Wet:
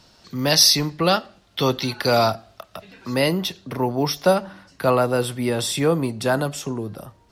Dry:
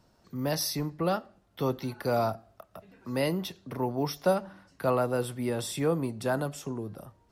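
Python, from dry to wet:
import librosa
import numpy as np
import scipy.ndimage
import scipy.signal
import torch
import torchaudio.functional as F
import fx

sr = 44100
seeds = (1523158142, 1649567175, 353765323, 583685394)

y = fx.peak_eq(x, sr, hz=3900.0, db=fx.steps((0.0, 13.5), (3.14, 5.5)), octaves=2.1)
y = y * librosa.db_to_amplitude(7.5)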